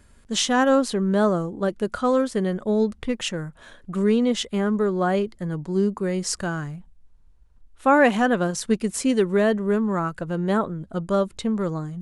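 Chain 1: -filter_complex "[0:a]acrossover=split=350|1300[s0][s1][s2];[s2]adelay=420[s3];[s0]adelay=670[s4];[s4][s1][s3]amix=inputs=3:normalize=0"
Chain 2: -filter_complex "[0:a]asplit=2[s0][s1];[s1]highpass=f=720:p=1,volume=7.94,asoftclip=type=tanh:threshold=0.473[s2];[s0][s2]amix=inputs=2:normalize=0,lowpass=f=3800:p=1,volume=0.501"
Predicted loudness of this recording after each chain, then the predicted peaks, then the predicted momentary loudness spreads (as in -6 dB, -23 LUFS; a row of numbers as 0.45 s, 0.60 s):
-25.0 LUFS, -19.0 LUFS; -8.0 dBFS, -7.0 dBFS; 8 LU, 8 LU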